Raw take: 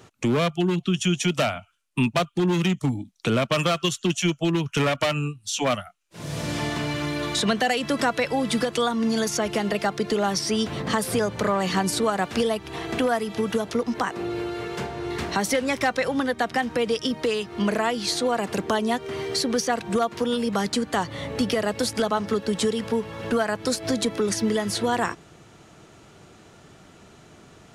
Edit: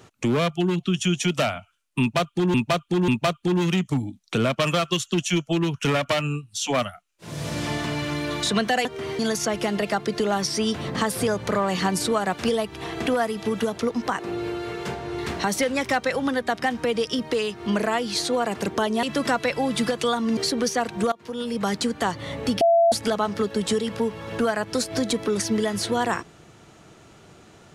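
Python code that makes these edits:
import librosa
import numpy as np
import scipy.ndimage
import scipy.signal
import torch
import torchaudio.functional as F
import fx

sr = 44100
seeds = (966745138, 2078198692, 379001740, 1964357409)

y = fx.edit(x, sr, fx.repeat(start_s=2.0, length_s=0.54, count=3),
    fx.swap(start_s=7.77, length_s=1.34, other_s=18.95, other_length_s=0.34),
    fx.fade_in_from(start_s=20.04, length_s=0.56, floor_db=-20.5),
    fx.bleep(start_s=21.53, length_s=0.31, hz=675.0, db=-13.5), tone=tone)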